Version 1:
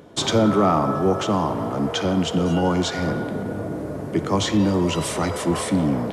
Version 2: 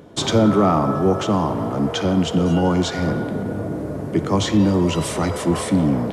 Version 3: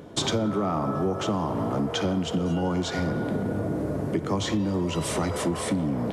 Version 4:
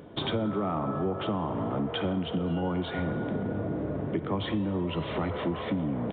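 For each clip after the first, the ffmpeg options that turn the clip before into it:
-af "lowshelf=f=380:g=4"
-af "acompressor=threshold=0.0708:ratio=6"
-af "aresample=8000,aresample=44100,volume=0.668"

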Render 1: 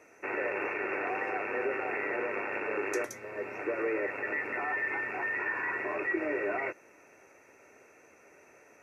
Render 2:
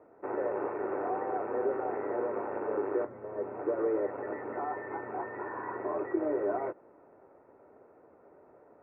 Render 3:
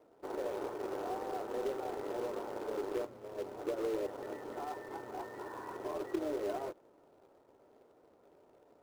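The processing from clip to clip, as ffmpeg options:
-af "lowpass=f=1100:w=0.5412,lowpass=f=1100:w=1.3066,volume=1.33"
-af "acrusher=bits=2:mode=log:mix=0:aa=0.000001,highshelf=f=2100:g=-9,volume=0.531"

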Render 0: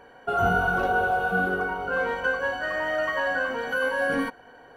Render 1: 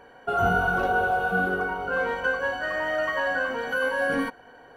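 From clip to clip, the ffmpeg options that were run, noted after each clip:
-af anull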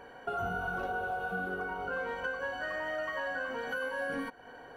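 -af "acompressor=threshold=0.0158:ratio=3"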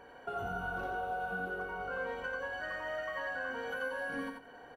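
-af "aecho=1:1:88|176|264:0.596|0.107|0.0193,volume=0.631"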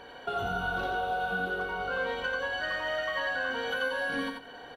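-af "equalizer=f=3700:w=1.8:g=14,volume=1.88"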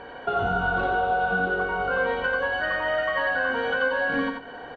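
-af "lowpass=2200,volume=2.37"

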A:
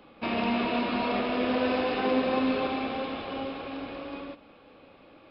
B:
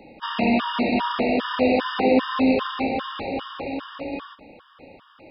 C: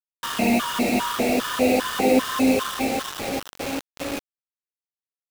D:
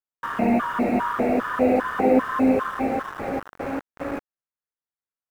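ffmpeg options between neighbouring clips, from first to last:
-af "afftfilt=real='re*gt(sin(2*PI*2.5*pts/sr)*(1-2*mod(floor(b*sr/1024/940),2)),0)':imag='im*gt(sin(2*PI*2.5*pts/sr)*(1-2*mod(floor(b*sr/1024/940),2)),0)':win_size=1024:overlap=0.75,volume=2.66"
-af "equalizer=f=940:w=5.8:g=-2.5,acrusher=bits=4:mix=0:aa=0.000001"
-filter_complex "[0:a]highshelf=f=2300:t=q:w=1.5:g=-11.5,acrossover=split=2900[s0][s1];[s1]alimiter=level_in=9.44:limit=0.0631:level=0:latency=1,volume=0.106[s2];[s0][s2]amix=inputs=2:normalize=0"

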